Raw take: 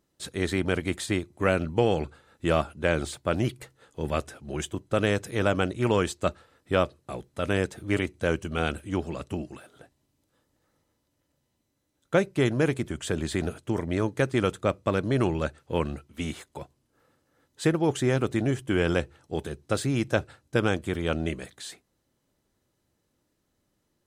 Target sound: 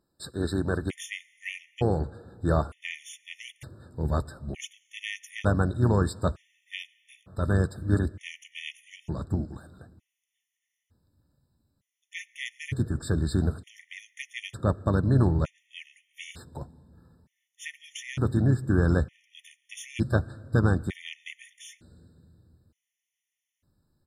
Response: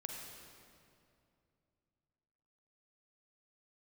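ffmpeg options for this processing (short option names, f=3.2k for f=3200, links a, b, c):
-filter_complex "[0:a]asplit=3[a][b][c];[b]asetrate=33038,aresample=44100,atempo=1.33484,volume=-11dB[d];[c]asetrate=37084,aresample=44100,atempo=1.18921,volume=-15dB[e];[a][d][e]amix=inputs=3:normalize=0,asubboost=boost=3:cutoff=210,asplit=2[f][g];[1:a]atrim=start_sample=2205,asetrate=34398,aresample=44100[h];[g][h]afir=irnorm=-1:irlink=0,volume=-18.5dB[i];[f][i]amix=inputs=2:normalize=0,afftfilt=real='re*gt(sin(2*PI*0.55*pts/sr)*(1-2*mod(floor(b*sr/1024/1800),2)),0)':imag='im*gt(sin(2*PI*0.55*pts/sr)*(1-2*mod(floor(b*sr/1024/1800),2)),0)':win_size=1024:overlap=0.75,volume=-2.5dB"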